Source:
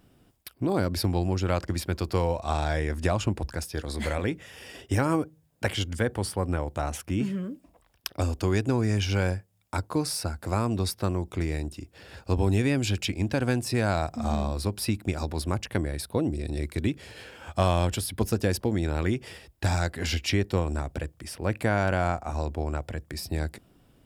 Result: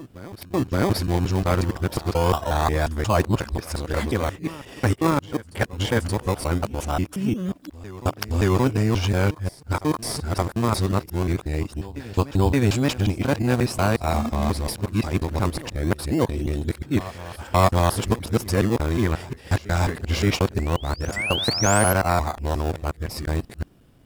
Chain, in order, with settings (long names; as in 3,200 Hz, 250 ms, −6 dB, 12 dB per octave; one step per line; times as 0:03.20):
reversed piece by piece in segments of 179 ms
dynamic equaliser 1,100 Hz, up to +7 dB, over −45 dBFS, Q 1.8
in parallel at −5 dB: sample-and-hold swept by an LFO 22×, swing 100% 0.22 Hz
on the sum: sound drawn into the spectrogram rise, 0:21.16–0:21.93, 1,900–12,000 Hz −27 dBFS
backwards echo 574 ms −18 dB
level +1 dB